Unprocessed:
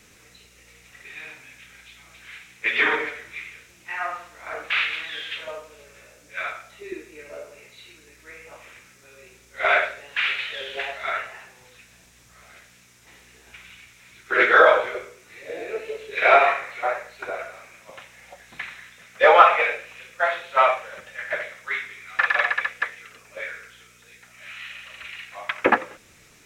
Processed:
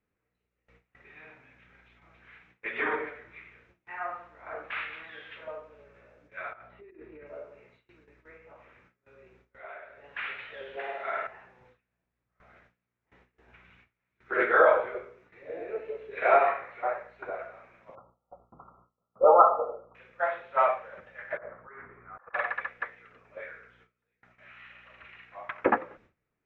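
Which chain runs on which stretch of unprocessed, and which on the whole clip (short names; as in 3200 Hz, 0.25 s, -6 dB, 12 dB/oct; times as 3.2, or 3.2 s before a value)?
6.53–7.27 negative-ratio compressor -43 dBFS + air absorption 230 m
8.37–10.04 compressor 2.5:1, threshold -43 dBFS + brick-wall FIR low-pass 9100 Hz
10.76–11.27 HPF 150 Hz + flutter echo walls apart 9.1 m, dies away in 0.91 s
17.95–19.95 brick-wall FIR low-pass 1400 Hz + dynamic EQ 320 Hz, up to +3 dB, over -26 dBFS, Q 0.84
21.37–22.34 Chebyshev low-pass 1300 Hz, order 3 + negative-ratio compressor -42 dBFS
whole clip: LPF 1400 Hz 12 dB/oct; gate with hold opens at -45 dBFS; gain -4.5 dB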